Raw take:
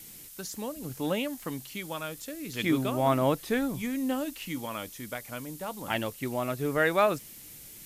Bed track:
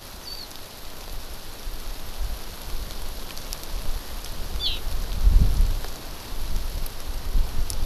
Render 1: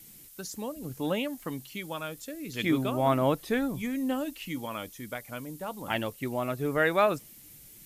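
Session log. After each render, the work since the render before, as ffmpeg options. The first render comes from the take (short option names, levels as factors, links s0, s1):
-af "afftdn=nr=6:nf=-48"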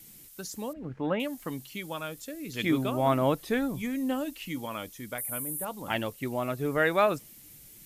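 -filter_complex "[0:a]asettb=1/sr,asplit=3[s0][s1][s2];[s0]atrim=end=0.734[s3];[s1]atrim=start=0.73:end=1.2,asetpts=PTS-STARTPTS,afade=t=in:d=0.004:c=qsin,afade=t=out:st=0.466:d=0.004:c=qsin,lowpass=f=1800:t=q:w=1.6[s4];[s2]atrim=start=1.196[s5];[s3][s4]acrossfade=d=0.004:c1=hsin:c2=qsin[s6];[s6][s5]acrossfade=d=0.004:c1=qsin:c2=hsin,asettb=1/sr,asplit=3[s7][s8][s9];[s7]atrim=end=5.184[s10];[s8]atrim=start=5.18:end=5.65,asetpts=PTS-STARTPTS,afade=t=in:d=0.004:c=qsin,afade=t=out:st=0.466:d=0.004:c=qsin,highshelf=f=7500:t=q:w=3:g=12.5[s11];[s9]atrim=start=5.646[s12];[s10][s11]acrossfade=d=0.004:c1=hsin:c2=qsin[s13];[s13][s12]acrossfade=d=0.004:c1=qsin:c2=hsin"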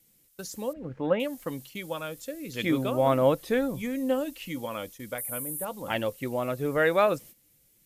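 -af "agate=range=0.224:threshold=0.00501:ratio=16:detection=peak,equalizer=f=520:w=7:g=10"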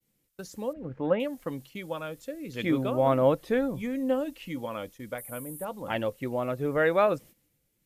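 -af "agate=range=0.0224:threshold=0.00112:ratio=3:detection=peak,highshelf=f=3500:g=-9.5"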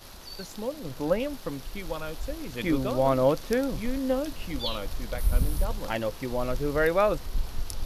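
-filter_complex "[1:a]volume=0.473[s0];[0:a][s0]amix=inputs=2:normalize=0"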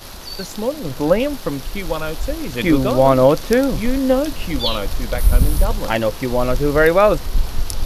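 -af "volume=3.55,alimiter=limit=0.794:level=0:latency=1"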